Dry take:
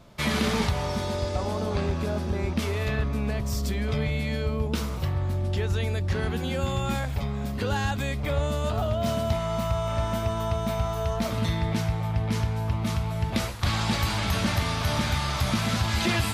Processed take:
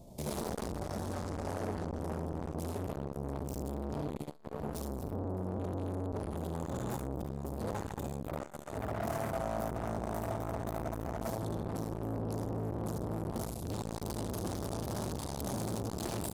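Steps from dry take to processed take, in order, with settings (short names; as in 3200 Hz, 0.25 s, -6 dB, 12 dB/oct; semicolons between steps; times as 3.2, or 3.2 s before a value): EQ curve 810 Hz 0 dB, 1400 Hz -27 dB, 9100 Hz +4 dB; hard clip -30.5 dBFS, distortion -7 dB; echo 74 ms -4 dB; core saturation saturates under 360 Hz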